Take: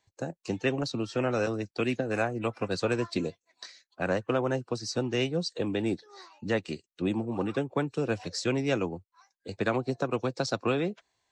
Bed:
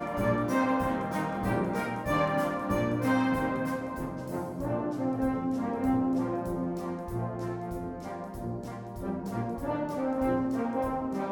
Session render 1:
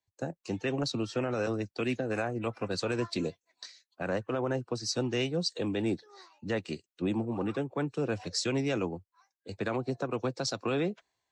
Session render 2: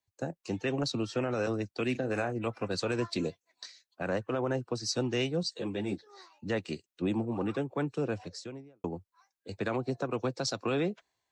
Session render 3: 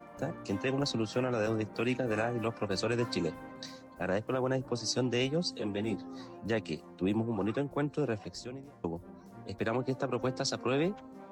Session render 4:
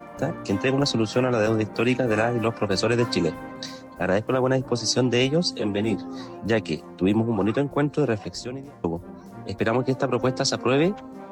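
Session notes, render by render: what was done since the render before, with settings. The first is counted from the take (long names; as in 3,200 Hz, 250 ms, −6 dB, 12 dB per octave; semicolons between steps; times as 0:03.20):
brickwall limiter −21.5 dBFS, peak gain reduction 7 dB; multiband upward and downward expander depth 40%
0:01.91–0:02.32: double-tracking delay 39 ms −13 dB; 0:05.43–0:06.07: string-ensemble chorus; 0:07.89–0:08.84: fade out and dull
mix in bed −17 dB
level +9.5 dB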